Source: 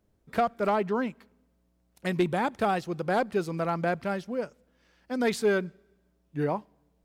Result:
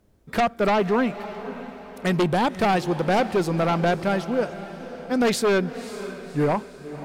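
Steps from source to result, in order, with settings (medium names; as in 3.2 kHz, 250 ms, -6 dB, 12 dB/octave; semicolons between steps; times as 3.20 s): sine folder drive 5 dB, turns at -16 dBFS; echo that smears into a reverb 550 ms, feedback 47%, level -13 dB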